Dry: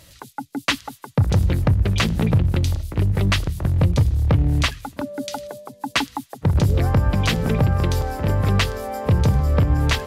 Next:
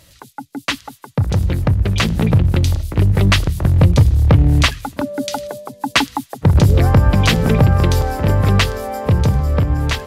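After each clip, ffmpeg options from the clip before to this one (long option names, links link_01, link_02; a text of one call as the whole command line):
ffmpeg -i in.wav -af "dynaudnorm=framelen=620:gausssize=7:maxgain=9dB" out.wav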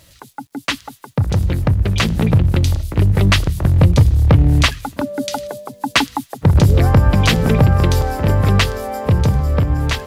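ffmpeg -i in.wav -af "acrusher=bits=9:mix=0:aa=0.000001" out.wav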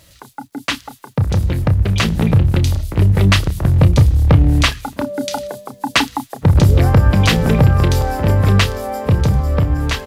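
ffmpeg -i in.wav -filter_complex "[0:a]asplit=2[link_01][link_02];[link_02]adelay=31,volume=-11dB[link_03];[link_01][link_03]amix=inputs=2:normalize=0" out.wav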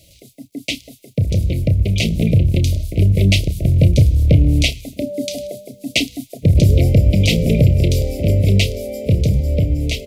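ffmpeg -i in.wav -af "asuperstop=centerf=1200:order=20:qfactor=0.85,volume=-1dB" out.wav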